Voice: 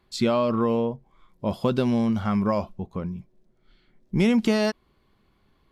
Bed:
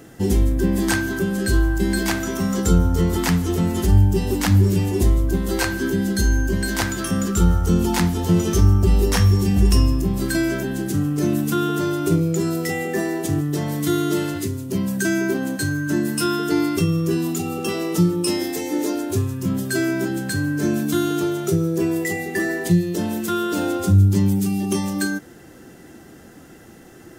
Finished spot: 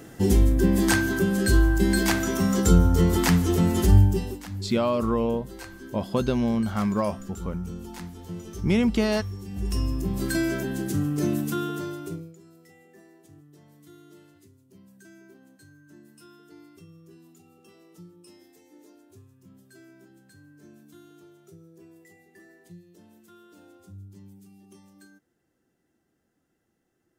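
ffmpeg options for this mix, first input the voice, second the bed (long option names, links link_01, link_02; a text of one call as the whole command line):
ffmpeg -i stem1.wav -i stem2.wav -filter_complex "[0:a]adelay=4500,volume=-1.5dB[link_01];[1:a]volume=14dB,afade=type=out:start_time=3.95:duration=0.45:silence=0.11885,afade=type=in:start_time=9.48:duration=0.81:silence=0.177828,afade=type=out:start_time=11.24:duration=1.12:silence=0.0501187[link_02];[link_01][link_02]amix=inputs=2:normalize=0" out.wav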